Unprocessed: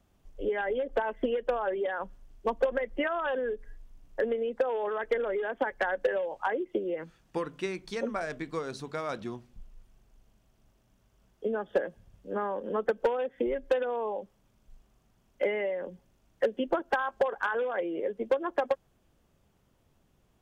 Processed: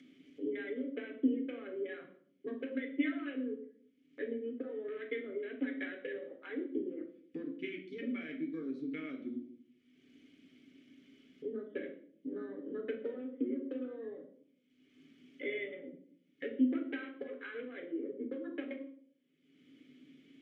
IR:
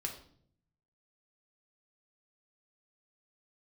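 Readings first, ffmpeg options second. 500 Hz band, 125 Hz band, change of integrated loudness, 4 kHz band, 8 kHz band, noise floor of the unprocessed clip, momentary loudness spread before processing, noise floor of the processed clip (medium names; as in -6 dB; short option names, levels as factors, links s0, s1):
-12.0 dB, -12.0 dB, -8.5 dB, -9.0 dB, no reading, -69 dBFS, 8 LU, -72 dBFS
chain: -filter_complex "[0:a]highpass=200,afwtdn=0.0126,acompressor=mode=upward:threshold=0.0251:ratio=2.5,asplit=3[s0][s1][s2];[s0]bandpass=f=270:t=q:w=8,volume=1[s3];[s1]bandpass=f=2290:t=q:w=8,volume=0.501[s4];[s2]bandpass=f=3010:t=q:w=8,volume=0.355[s5];[s3][s4][s5]amix=inputs=3:normalize=0[s6];[1:a]atrim=start_sample=2205[s7];[s6][s7]afir=irnorm=-1:irlink=0,volume=2.37"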